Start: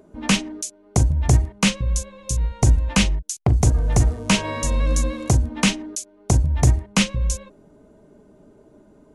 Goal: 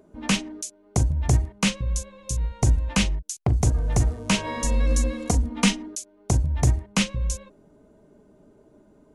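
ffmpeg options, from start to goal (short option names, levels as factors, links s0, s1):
-filter_complex "[0:a]asettb=1/sr,asplit=3[s0][s1][s2];[s0]atrim=end=4.464[s3];[s1]atrim=start=4.46:end=5.88,asetpts=PTS-STARTPTS,afade=t=in:d=0.004:c=qsin,afade=t=out:st=1.416:d=0.004:c=qsin,aecho=1:1:4.2:0.72,atrim=end_sample=62622[s4];[s2]atrim=start=5.876[s5];[s3][s4]acrossfade=d=0.004:c1=hsin:c2=qsin[s6];[s6][s5]acrossfade=d=0.004:c1=qsin:c2=hsin,volume=0.631"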